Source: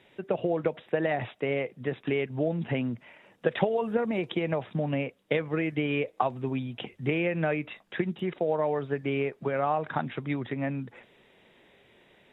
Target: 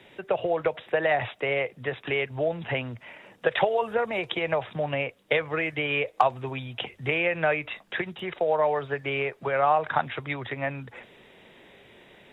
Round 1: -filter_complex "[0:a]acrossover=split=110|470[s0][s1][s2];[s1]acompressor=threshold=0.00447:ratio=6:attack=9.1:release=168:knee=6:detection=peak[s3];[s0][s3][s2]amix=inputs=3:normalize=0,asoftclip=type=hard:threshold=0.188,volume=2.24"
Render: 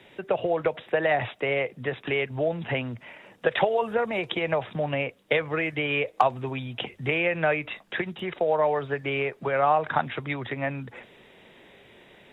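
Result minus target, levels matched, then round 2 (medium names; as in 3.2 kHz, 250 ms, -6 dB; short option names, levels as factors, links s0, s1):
compression: peak gain reduction -8.5 dB
-filter_complex "[0:a]acrossover=split=110|470[s0][s1][s2];[s1]acompressor=threshold=0.00141:ratio=6:attack=9.1:release=168:knee=6:detection=peak[s3];[s0][s3][s2]amix=inputs=3:normalize=0,asoftclip=type=hard:threshold=0.188,volume=2.24"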